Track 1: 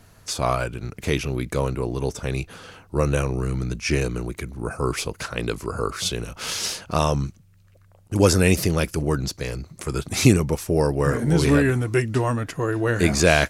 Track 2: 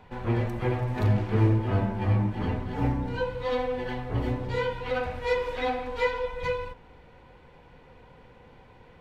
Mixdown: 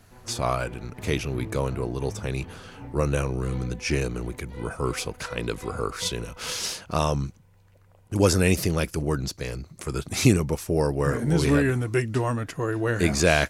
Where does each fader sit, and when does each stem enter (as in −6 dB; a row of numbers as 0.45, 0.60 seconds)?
−3.0, −15.0 decibels; 0.00, 0.00 seconds